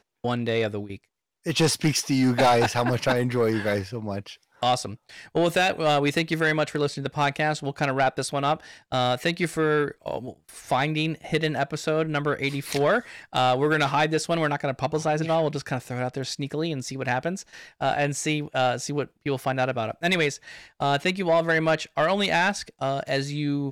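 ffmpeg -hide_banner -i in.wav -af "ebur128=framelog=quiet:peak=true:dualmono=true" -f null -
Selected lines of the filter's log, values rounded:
Integrated loudness:
  I:         -21.8 LUFS
  Threshold: -32.1 LUFS
Loudness range:
  LRA:         3.8 LU
  Threshold: -42.1 LUFS
  LRA low:   -24.3 LUFS
  LRA high:  -20.4 LUFS
True peak:
  Peak:      -13.5 dBFS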